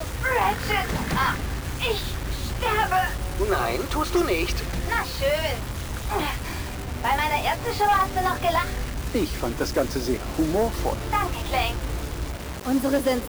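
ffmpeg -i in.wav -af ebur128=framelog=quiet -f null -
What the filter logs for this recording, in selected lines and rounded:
Integrated loudness:
  I:         -25.2 LUFS
  Threshold: -35.2 LUFS
Loudness range:
  LRA:         1.9 LU
  Threshold: -45.2 LUFS
  LRA low:   -26.2 LUFS
  LRA high:  -24.3 LUFS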